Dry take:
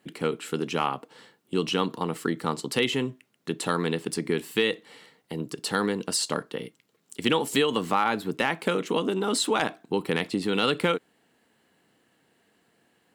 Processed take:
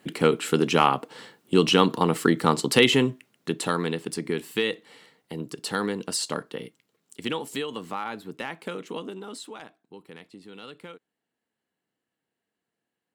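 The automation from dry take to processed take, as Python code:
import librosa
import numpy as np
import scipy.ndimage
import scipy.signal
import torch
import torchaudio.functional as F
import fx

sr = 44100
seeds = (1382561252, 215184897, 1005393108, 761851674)

y = fx.gain(x, sr, db=fx.line((2.94, 7.0), (3.98, -1.5), (6.64, -1.5), (7.68, -8.5), (8.99, -8.5), (9.7, -19.0)))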